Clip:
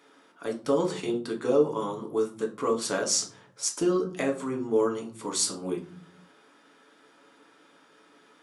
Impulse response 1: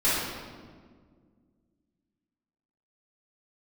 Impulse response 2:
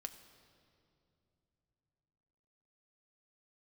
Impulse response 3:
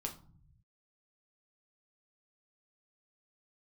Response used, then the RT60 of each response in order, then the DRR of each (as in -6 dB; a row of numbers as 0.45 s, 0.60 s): 3; 1.8 s, no single decay rate, 0.45 s; -13.5 dB, 7.5 dB, 1.5 dB